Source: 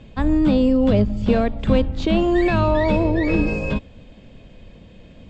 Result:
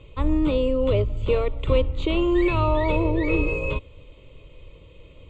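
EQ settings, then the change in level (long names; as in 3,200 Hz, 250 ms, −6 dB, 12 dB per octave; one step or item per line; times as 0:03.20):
phaser with its sweep stopped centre 1,100 Hz, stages 8
0.0 dB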